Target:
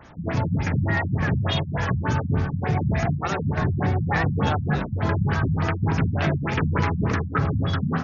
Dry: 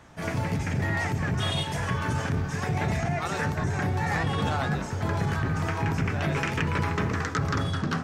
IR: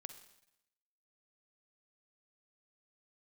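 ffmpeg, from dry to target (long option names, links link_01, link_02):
-af "afftfilt=real='re*lt(b*sr/1024,220*pow(7300/220,0.5+0.5*sin(2*PI*3.4*pts/sr)))':imag='im*lt(b*sr/1024,220*pow(7300/220,0.5+0.5*sin(2*PI*3.4*pts/sr)))':win_size=1024:overlap=0.75,volume=5dB"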